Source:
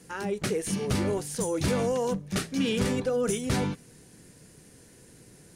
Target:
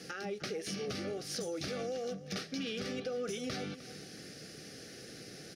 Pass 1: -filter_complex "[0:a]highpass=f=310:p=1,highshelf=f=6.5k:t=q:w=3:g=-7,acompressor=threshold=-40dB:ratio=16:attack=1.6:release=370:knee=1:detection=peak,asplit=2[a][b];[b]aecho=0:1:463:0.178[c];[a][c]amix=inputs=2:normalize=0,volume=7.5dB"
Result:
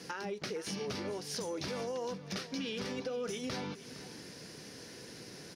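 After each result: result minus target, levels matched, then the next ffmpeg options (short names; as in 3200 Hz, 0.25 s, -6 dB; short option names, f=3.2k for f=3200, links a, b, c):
echo 0.157 s late; 1000 Hz band +3.0 dB
-filter_complex "[0:a]highpass=f=310:p=1,highshelf=f=6.5k:t=q:w=3:g=-7,acompressor=threshold=-40dB:ratio=16:attack=1.6:release=370:knee=1:detection=peak,asplit=2[a][b];[b]aecho=0:1:306:0.178[c];[a][c]amix=inputs=2:normalize=0,volume=7.5dB"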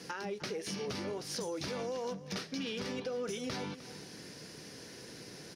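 1000 Hz band +3.0 dB
-filter_complex "[0:a]highpass=f=310:p=1,highshelf=f=6.5k:t=q:w=3:g=-7,acompressor=threshold=-40dB:ratio=16:attack=1.6:release=370:knee=1:detection=peak,asuperstop=centerf=970:order=8:qfactor=3.4,asplit=2[a][b];[b]aecho=0:1:306:0.178[c];[a][c]amix=inputs=2:normalize=0,volume=7.5dB"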